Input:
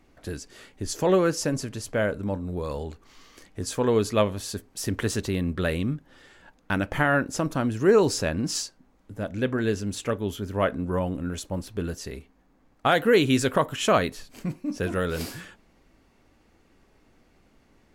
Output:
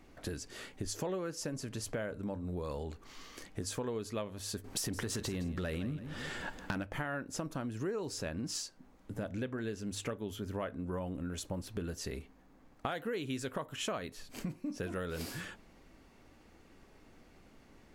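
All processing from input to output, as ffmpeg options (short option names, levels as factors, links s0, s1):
-filter_complex "[0:a]asettb=1/sr,asplit=3[s0][s1][s2];[s0]atrim=end=4.644[s3];[s1]atrim=start=4.64:end=6.83,asetpts=PTS-STARTPTS,afade=t=in:d=0.004:c=qsin,afade=t=out:st=2.186:d=0.004:c=qsin,acompressor=threshold=0.0316:ratio=3:attack=3.2:release=140:knee=1:detection=peak,aeval=exprs='0.178*sin(PI/2*2.51*val(0)/0.178)':c=same,aecho=1:1:164|328|492:0.2|0.0638|0.0204,atrim=end_sample=96579[s4];[s2]atrim=start=6.826[s5];[s3][s4]acrossfade=d=0.004:c1=hsin:c2=qsin[s6];[s6][s5]acrossfade=d=0.004:c1=qsin:c2=hsin,bandreject=f=50:t=h:w=6,bandreject=f=100:t=h:w=6,acompressor=threshold=0.0141:ratio=6,volume=1.12"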